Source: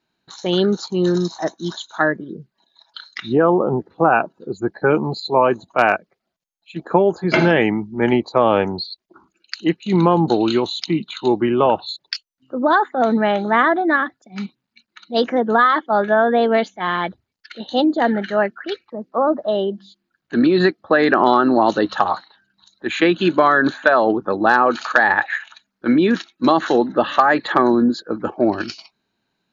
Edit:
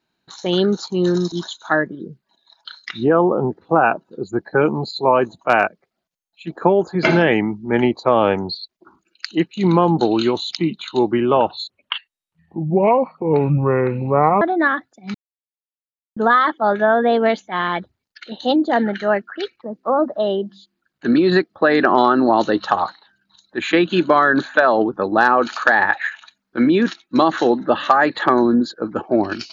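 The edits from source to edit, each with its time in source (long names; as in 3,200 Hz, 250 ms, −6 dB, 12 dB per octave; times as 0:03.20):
0:01.32–0:01.61: remove
0:11.99–0:13.70: play speed 63%
0:14.43–0:15.45: silence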